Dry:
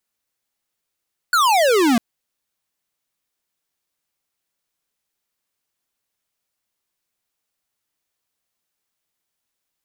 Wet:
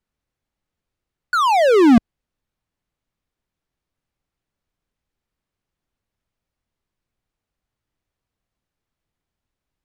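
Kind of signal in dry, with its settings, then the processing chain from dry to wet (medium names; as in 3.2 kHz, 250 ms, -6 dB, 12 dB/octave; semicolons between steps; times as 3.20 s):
laser zap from 1.5 kHz, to 220 Hz, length 0.65 s square, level -15 dB
RIAA curve playback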